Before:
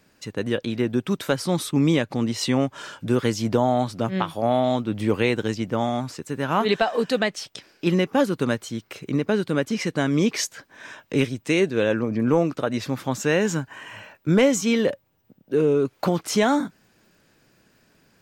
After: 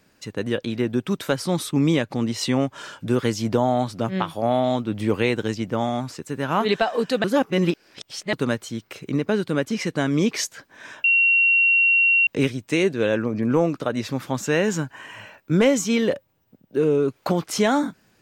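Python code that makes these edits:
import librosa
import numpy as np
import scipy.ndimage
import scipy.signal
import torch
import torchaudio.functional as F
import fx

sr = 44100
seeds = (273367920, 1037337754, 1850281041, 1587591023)

y = fx.edit(x, sr, fx.reverse_span(start_s=7.24, length_s=1.09),
    fx.insert_tone(at_s=11.04, length_s=1.23, hz=2740.0, db=-14.0), tone=tone)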